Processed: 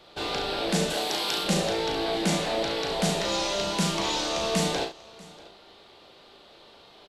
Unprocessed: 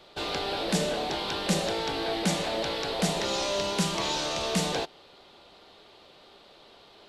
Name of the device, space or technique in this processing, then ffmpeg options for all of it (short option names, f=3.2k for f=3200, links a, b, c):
slapback doubling: -filter_complex "[0:a]asettb=1/sr,asplit=3[a][b][c];[a]atrim=end=0.904[d];[b]atrim=start=0.9:end=1.44,asetpts=PTS-STARTPTS,afade=t=in:d=0.004:c=qsin,afade=t=out:st=0.536:d=0.004:c=qsin,aemphasis=mode=production:type=bsi[e];[c]atrim=start=1.436[f];[d][e]acrossfade=d=0.004:c1=hsin:c2=qsin[g];[g][f]acrossfade=d=0.004:c1=qsin:c2=hsin,asplit=3[h][i][j];[i]adelay=36,volume=-5dB[k];[j]adelay=69,volume=-9.5dB[l];[h][k][l]amix=inputs=3:normalize=0,aecho=1:1:640:0.075"